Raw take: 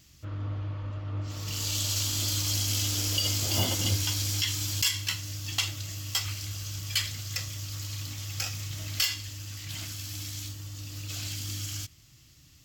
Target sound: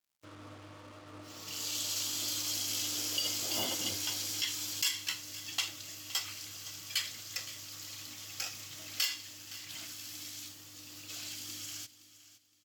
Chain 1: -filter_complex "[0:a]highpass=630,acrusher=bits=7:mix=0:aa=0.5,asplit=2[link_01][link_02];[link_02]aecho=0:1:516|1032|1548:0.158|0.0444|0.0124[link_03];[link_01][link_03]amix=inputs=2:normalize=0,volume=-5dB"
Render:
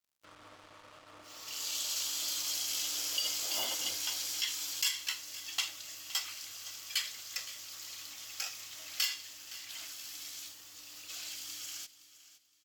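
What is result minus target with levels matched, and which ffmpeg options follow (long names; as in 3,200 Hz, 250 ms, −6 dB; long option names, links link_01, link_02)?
250 Hz band −11.0 dB
-filter_complex "[0:a]highpass=270,acrusher=bits=7:mix=0:aa=0.5,asplit=2[link_01][link_02];[link_02]aecho=0:1:516|1032|1548:0.158|0.0444|0.0124[link_03];[link_01][link_03]amix=inputs=2:normalize=0,volume=-5dB"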